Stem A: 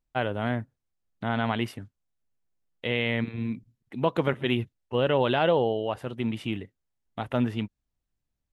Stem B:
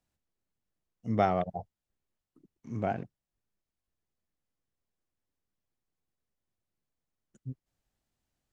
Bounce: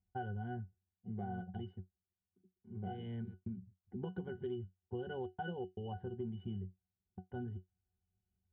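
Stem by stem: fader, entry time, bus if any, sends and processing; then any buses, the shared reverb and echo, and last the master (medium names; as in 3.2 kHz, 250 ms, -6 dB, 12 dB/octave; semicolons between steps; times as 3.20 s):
+2.0 dB, 0.00 s, no send, level-controlled noise filter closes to 1.2 kHz, open at -19.5 dBFS; bass shelf 280 Hz +9.5 dB; trance gate "xxxxxxxxxxx.xx." 117 bpm -60 dB; auto duck -7 dB, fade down 0.25 s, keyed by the second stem
+1.0 dB, 0.00 s, no send, none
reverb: none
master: treble shelf 3.9 kHz -8 dB; pitch-class resonator F#, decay 0.14 s; compression 6:1, threshold -39 dBFS, peak gain reduction 14.5 dB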